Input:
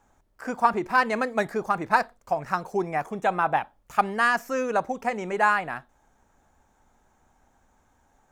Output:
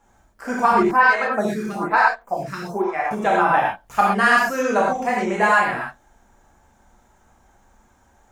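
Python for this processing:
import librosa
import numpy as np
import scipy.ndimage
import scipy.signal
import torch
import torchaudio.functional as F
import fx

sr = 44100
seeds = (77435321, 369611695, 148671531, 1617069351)

y = fx.rev_gated(x, sr, seeds[0], gate_ms=150, shape='flat', drr_db=-5.0)
y = fx.stagger_phaser(y, sr, hz=1.1, at=(0.91, 3.11))
y = y * librosa.db_to_amplitude(1.0)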